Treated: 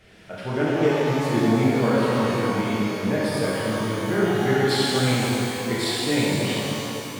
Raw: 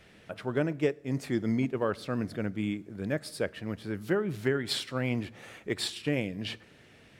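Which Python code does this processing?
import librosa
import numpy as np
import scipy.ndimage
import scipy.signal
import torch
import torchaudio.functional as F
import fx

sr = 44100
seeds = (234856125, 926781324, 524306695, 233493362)

y = fx.rev_shimmer(x, sr, seeds[0], rt60_s=3.1, semitones=12, shimmer_db=-8, drr_db=-8.5)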